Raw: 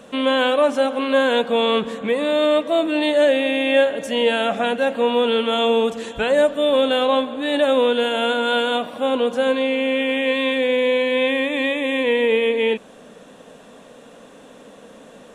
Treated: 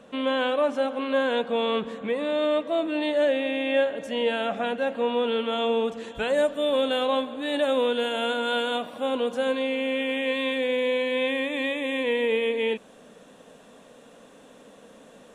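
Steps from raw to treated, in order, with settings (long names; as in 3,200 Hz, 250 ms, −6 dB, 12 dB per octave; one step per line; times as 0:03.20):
high-shelf EQ 5,800 Hz −9 dB, from 0:06.15 +2.5 dB
level −6.5 dB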